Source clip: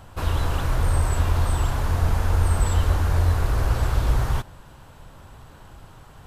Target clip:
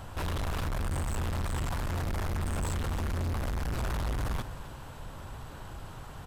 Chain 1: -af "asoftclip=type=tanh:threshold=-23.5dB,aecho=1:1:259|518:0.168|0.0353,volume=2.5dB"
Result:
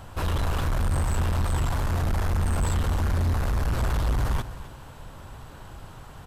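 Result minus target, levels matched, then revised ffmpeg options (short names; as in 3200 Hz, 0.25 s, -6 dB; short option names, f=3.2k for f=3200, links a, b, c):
soft clip: distortion -4 dB
-af "asoftclip=type=tanh:threshold=-32.5dB,aecho=1:1:259|518:0.168|0.0353,volume=2.5dB"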